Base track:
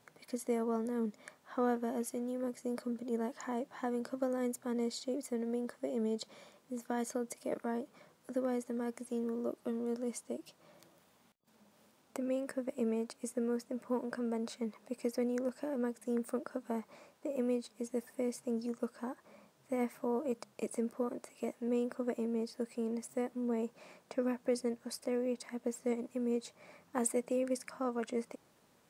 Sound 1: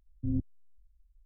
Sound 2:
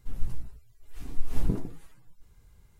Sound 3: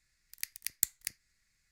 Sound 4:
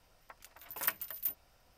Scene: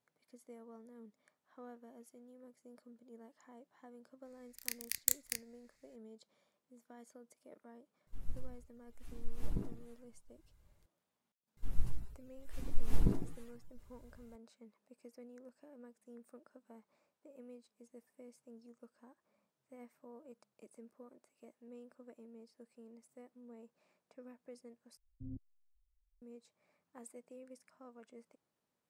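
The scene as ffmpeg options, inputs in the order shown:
ffmpeg -i bed.wav -i cue0.wav -i cue1.wav -i cue2.wav -filter_complex "[2:a]asplit=2[link_01][link_02];[0:a]volume=-20dB[link_03];[3:a]asplit=2[link_04][link_05];[link_05]adelay=31,volume=-4dB[link_06];[link_04][link_06]amix=inputs=2:normalize=0[link_07];[link_03]asplit=2[link_08][link_09];[link_08]atrim=end=24.974[link_10];[1:a]atrim=end=1.25,asetpts=PTS-STARTPTS,volume=-16dB[link_11];[link_09]atrim=start=26.216[link_12];[link_07]atrim=end=1.71,asetpts=PTS-STARTPTS,volume=-2.5dB,afade=type=in:duration=0.004:curve=hsin,afade=type=out:start_time=1.706:duration=0.004:curve=hsin,adelay=187425S[link_13];[link_01]atrim=end=2.79,asetpts=PTS-STARTPTS,volume=-11dB,afade=type=in:duration=0.004:curve=hsin,afade=type=out:start_time=2.786:duration=0.004:curve=hsin,adelay=8070[link_14];[link_02]atrim=end=2.79,asetpts=PTS-STARTPTS,volume=-3.5dB,afade=type=in:duration=0.004:curve=hsin,afade=type=out:start_time=2.786:duration=0.004:curve=hsin,adelay=11570[link_15];[link_10][link_11]acrossfade=duration=0.004:curve1=hsin:curve2=hsin[link_16];[link_16][link_12]acrossfade=duration=0.004:curve1=hsin:curve2=hsin[link_17];[link_17][link_13][link_14][link_15]amix=inputs=4:normalize=0" out.wav

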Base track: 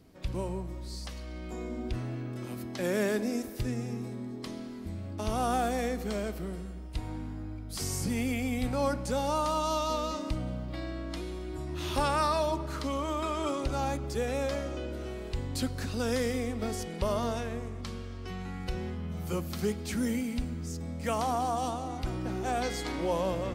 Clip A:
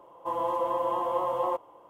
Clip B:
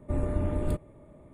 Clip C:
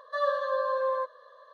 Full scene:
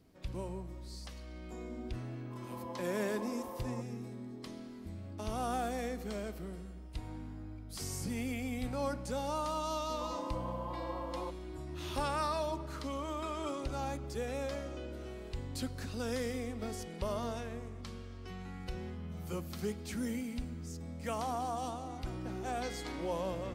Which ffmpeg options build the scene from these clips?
ffmpeg -i bed.wav -i cue0.wav -filter_complex "[1:a]asplit=2[link_01][link_02];[0:a]volume=-6.5dB[link_03];[link_01]acrossover=split=1100[link_04][link_05];[link_04]adelay=200[link_06];[link_06][link_05]amix=inputs=2:normalize=0,atrim=end=1.89,asetpts=PTS-STARTPTS,volume=-15.5dB,afade=type=in:duration=0.004:curve=hsin,afade=type=out:start_time=1.886:duration=0.004:curve=hsin,adelay=2050[link_07];[link_02]atrim=end=1.89,asetpts=PTS-STARTPTS,volume=-13.5dB,afade=type=in:duration=0.004:curve=hsin,afade=type=out:start_time=1.886:duration=0.004:curve=hsin,adelay=9740[link_08];[link_03][link_07][link_08]amix=inputs=3:normalize=0" out.wav

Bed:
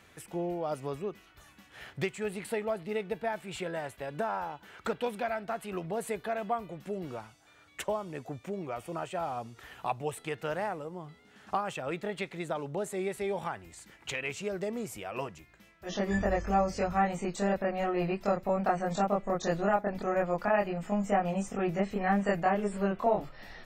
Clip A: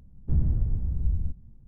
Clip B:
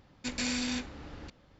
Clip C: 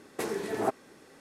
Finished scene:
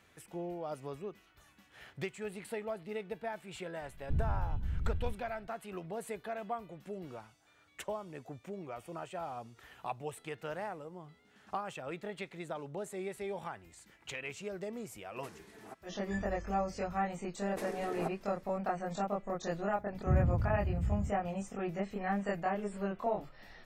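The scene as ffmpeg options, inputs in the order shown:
ffmpeg -i bed.wav -i cue0.wav -i cue1.wav -i cue2.wav -filter_complex "[1:a]asplit=2[link_01][link_02];[3:a]asplit=2[link_03][link_04];[0:a]volume=-6.5dB[link_05];[link_01]alimiter=limit=-18dB:level=0:latency=1:release=392[link_06];[link_03]equalizer=frequency=460:width_type=o:width=1.7:gain=-8.5[link_07];[link_02]highpass=87[link_08];[link_06]atrim=end=1.67,asetpts=PTS-STARTPTS,volume=-6dB,afade=type=in:duration=0.004:curve=hsin,afade=type=out:start_time=1.666:duration=0.004:curve=hsin,adelay=168021S[link_09];[link_07]atrim=end=1.2,asetpts=PTS-STARTPTS,volume=-16.5dB,afade=type=in:duration=0.004:curve=hsin,afade=type=out:start_time=1.196:duration=0.004:curve=hsin,adelay=15040[link_10];[link_04]atrim=end=1.2,asetpts=PTS-STARTPTS,volume=-9.5dB,afade=type=in:duration=0.004:curve=hsin,afade=type=out:start_time=1.196:duration=0.004:curve=hsin,adelay=17380[link_11];[link_08]atrim=end=1.67,asetpts=PTS-STARTPTS,afade=type=in:duration=0.004:curve=hsin,afade=type=out:start_time=1.666:duration=0.004:curve=hsin,adelay=19780[link_12];[link_05][link_09][link_10][link_11][link_12]amix=inputs=5:normalize=0" out.wav

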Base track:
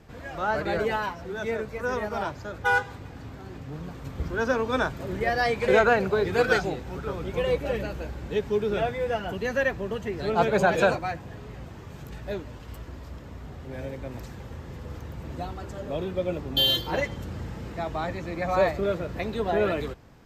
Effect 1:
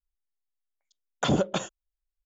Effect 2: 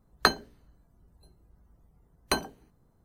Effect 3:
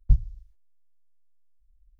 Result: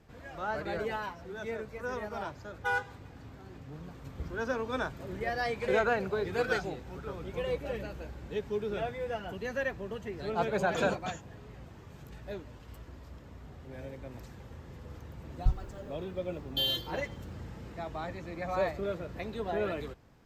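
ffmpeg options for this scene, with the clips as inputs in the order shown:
ffmpeg -i bed.wav -i cue0.wav -i cue1.wav -i cue2.wav -filter_complex "[0:a]volume=-8dB[link_01];[1:a]aecho=1:1:4.4:0.65[link_02];[3:a]aemphasis=mode=production:type=75fm[link_03];[link_02]atrim=end=2.25,asetpts=PTS-STARTPTS,volume=-12.5dB,afade=type=in:duration=0.004:curve=hsin,afade=type=out:start_time=2.246:duration=0.004:curve=hsin,adelay=9520[link_04];[link_03]atrim=end=1.99,asetpts=PTS-STARTPTS,volume=-6.5dB,afade=type=in:duration=0.004:curve=hsin,afade=type=out:start_time=1.986:duration=0.004:curve=hsin,adelay=15360[link_05];[link_01][link_04][link_05]amix=inputs=3:normalize=0" out.wav

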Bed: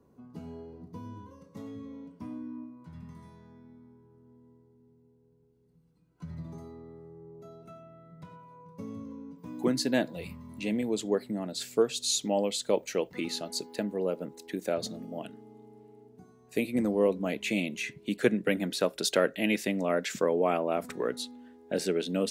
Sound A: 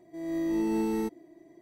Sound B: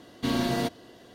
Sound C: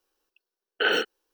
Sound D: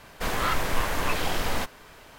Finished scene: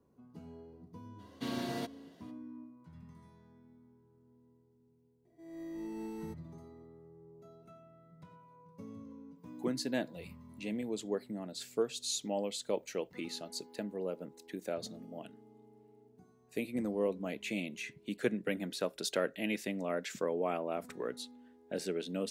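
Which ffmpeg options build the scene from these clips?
ffmpeg -i bed.wav -i cue0.wav -i cue1.wav -filter_complex "[0:a]volume=-7.5dB[link_01];[2:a]highpass=120,atrim=end=1.14,asetpts=PTS-STARTPTS,volume=-10.5dB,afade=type=in:duration=0.02,afade=type=out:start_time=1.12:duration=0.02,adelay=1180[link_02];[1:a]atrim=end=1.61,asetpts=PTS-STARTPTS,volume=-14dB,afade=type=in:duration=0.004:curve=hsin,afade=type=out:start_time=1.606:duration=0.004:curve=hsin,adelay=231525S[link_03];[link_01][link_02][link_03]amix=inputs=3:normalize=0" out.wav

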